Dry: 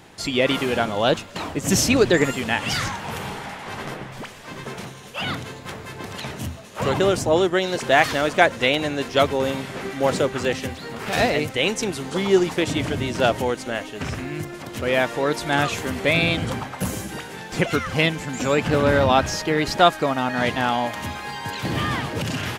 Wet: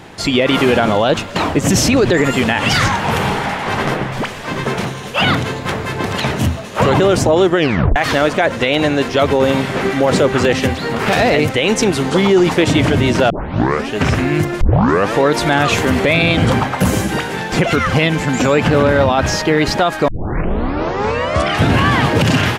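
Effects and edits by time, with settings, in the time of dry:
0:07.56: tape stop 0.40 s
0:13.30: tape start 0.64 s
0:14.61: tape start 0.53 s
0:20.08: tape start 1.89 s
whole clip: automatic gain control gain up to 3.5 dB; high-shelf EQ 4,900 Hz −8 dB; boost into a limiter +14 dB; level −3 dB

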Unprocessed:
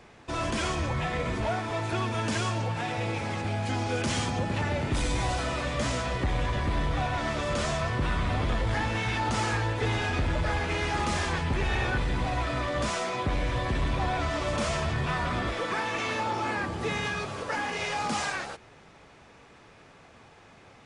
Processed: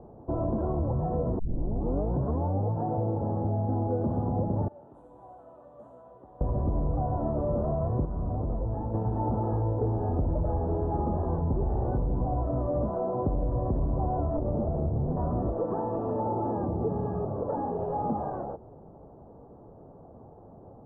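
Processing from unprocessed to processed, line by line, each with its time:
0:01.39: tape start 1.34 s
0:04.68–0:06.41: first difference
0:08.05–0:08.94: clip gain −7.5 dB
0:14.37–0:15.17: windowed peak hold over 33 samples
whole clip: inverse Chebyshev low-pass filter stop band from 2,000 Hz, stop band 50 dB; downward compressor 3 to 1, threshold −32 dBFS; level +6.5 dB

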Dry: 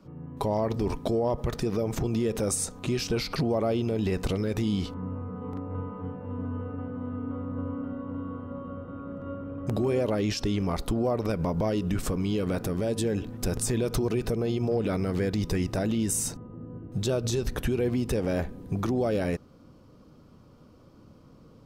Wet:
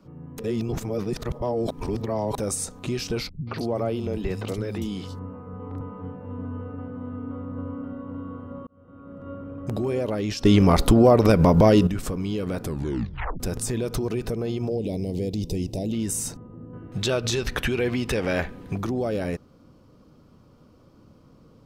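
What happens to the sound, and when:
0:00.38–0:02.38: reverse
0:03.29–0:05.81: three-band delay without the direct sound lows, mids, highs 180/250 ms, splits 180/4,000 Hz
0:08.67–0:09.36: fade in
0:10.45–0:11.87: clip gain +11.5 dB
0:12.62: tape stop 0.78 s
0:14.69–0:15.93: Butterworth band-reject 1,400 Hz, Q 0.61
0:16.73–0:18.78: parametric band 2,200 Hz +12 dB 2.6 octaves

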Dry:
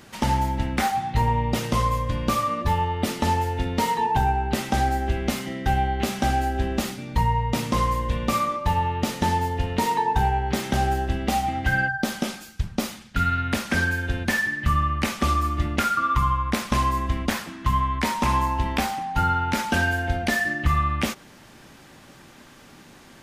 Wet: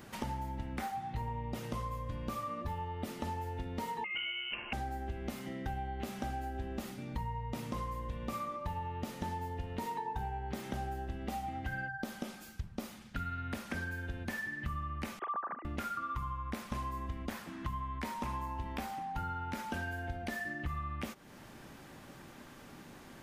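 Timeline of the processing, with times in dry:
0:04.04–0:04.73: voice inversion scrambler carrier 3,000 Hz
0:15.19–0:15.65: three sine waves on the formant tracks
whole clip: high-shelf EQ 2,800 Hz −9 dB; downward compressor 3 to 1, threshold −37 dBFS; high-shelf EQ 10,000 Hz +11.5 dB; level −3 dB

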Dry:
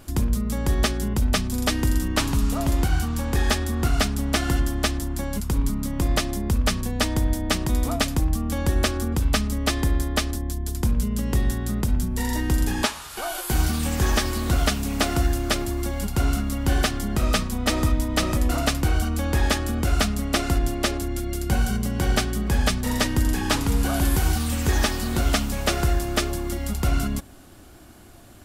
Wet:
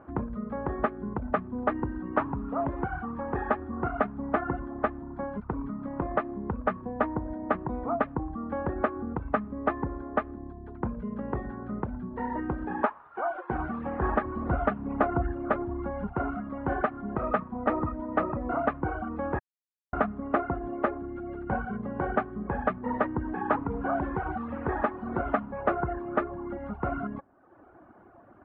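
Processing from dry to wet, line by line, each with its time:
0:14.02–0:16.13: low-shelf EQ 140 Hz +8 dB
0:19.39–0:19.93: silence
whole clip: high-pass filter 540 Hz 6 dB per octave; reverb reduction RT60 0.92 s; inverse Chebyshev low-pass filter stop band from 5,700 Hz, stop band 70 dB; level +4 dB

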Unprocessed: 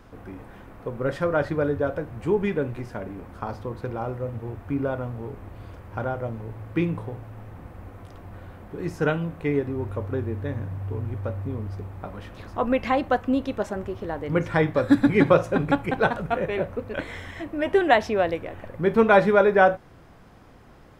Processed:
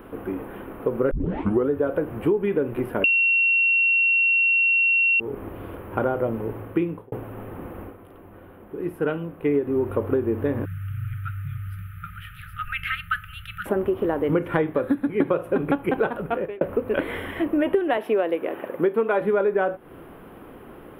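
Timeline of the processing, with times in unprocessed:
0:01.11: tape start 0.59 s
0:03.04–0:05.20: beep over 2,730 Hz −11.5 dBFS
0:06.56–0:07.12: fade out
0:07.81–0:09.57: duck −9.5 dB, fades 0.16 s
0:10.65–0:13.66: linear-phase brick-wall band-stop 170–1,200 Hz
0:14.57–0:15.20: fade out, to −14 dB
0:15.98–0:16.61: fade out
0:17.97–0:19.21: high-pass filter 260 Hz
whole clip: drawn EQ curve 110 Hz 0 dB, 380 Hz +14 dB, 700 Hz +6 dB, 1,300 Hz +8 dB, 2,000 Hz +4 dB, 3,000 Hz +7 dB, 4,600 Hz −13 dB, 6,600 Hz −17 dB, 11,000 Hz +14 dB; downward compressor 12 to 1, threshold −18 dBFS

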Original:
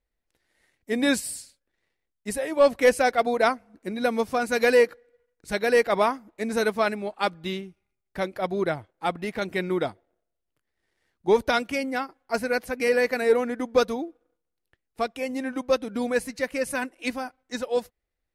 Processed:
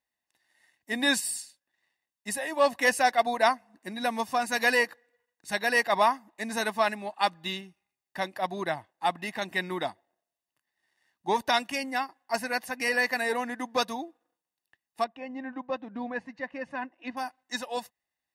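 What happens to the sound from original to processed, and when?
0:15.04–0:17.17: head-to-tape spacing loss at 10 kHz 43 dB
whole clip: Bessel high-pass filter 190 Hz, order 2; low-shelf EQ 400 Hz −7.5 dB; comb filter 1.1 ms, depth 62%

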